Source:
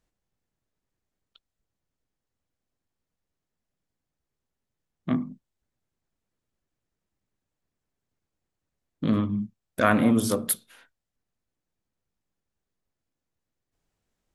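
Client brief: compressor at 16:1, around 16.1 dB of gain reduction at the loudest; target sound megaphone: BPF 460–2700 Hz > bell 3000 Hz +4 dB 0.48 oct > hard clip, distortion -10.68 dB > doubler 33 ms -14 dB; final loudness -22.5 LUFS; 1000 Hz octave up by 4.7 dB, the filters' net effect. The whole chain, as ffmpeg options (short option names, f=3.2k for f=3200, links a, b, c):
-filter_complex "[0:a]equalizer=f=1k:t=o:g=7,acompressor=threshold=-27dB:ratio=16,highpass=460,lowpass=2.7k,equalizer=f=3k:t=o:w=0.48:g=4,asoftclip=type=hard:threshold=-28.5dB,asplit=2[a][b];[b]adelay=33,volume=-14dB[c];[a][c]amix=inputs=2:normalize=0,volume=19dB"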